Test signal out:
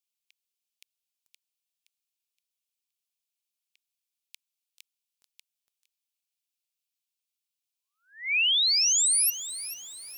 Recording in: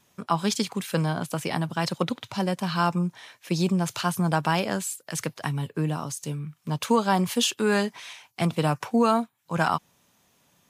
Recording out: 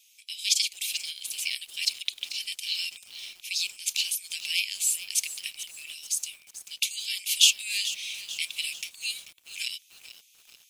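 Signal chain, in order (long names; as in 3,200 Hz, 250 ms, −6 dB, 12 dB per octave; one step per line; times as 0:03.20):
Butterworth high-pass 2,300 Hz 72 dB per octave
feedback echo at a low word length 438 ms, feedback 55%, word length 8 bits, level −13 dB
level +7 dB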